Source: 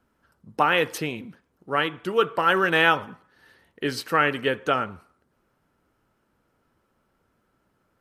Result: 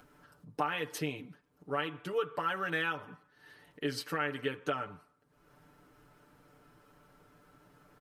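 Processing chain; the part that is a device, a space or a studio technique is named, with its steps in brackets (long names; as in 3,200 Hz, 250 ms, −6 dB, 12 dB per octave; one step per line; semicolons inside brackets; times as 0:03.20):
upward and downward compression (upward compression, threshold −42 dBFS; downward compressor 4 to 1, threshold −25 dBFS, peak gain reduction 10.5 dB)
comb filter 6.8 ms, depth 86%
level −8.5 dB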